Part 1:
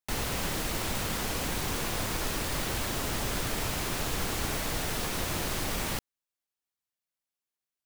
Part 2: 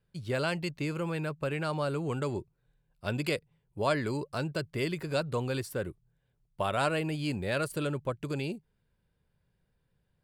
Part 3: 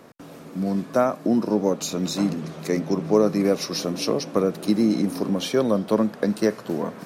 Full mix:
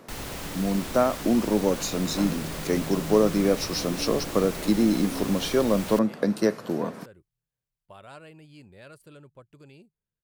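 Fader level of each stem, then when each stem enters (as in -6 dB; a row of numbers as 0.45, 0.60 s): -4.5, -17.0, -1.5 dB; 0.00, 1.30, 0.00 s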